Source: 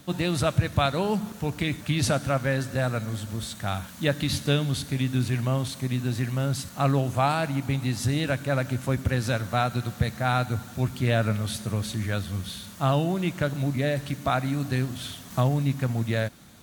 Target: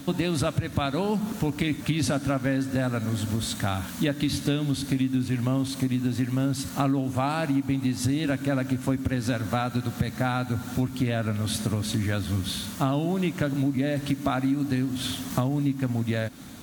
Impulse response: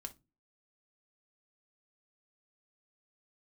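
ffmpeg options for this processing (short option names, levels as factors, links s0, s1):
-af "equalizer=f=270:w=4.6:g=11.5,acompressor=threshold=0.0355:ratio=6,volume=2.11"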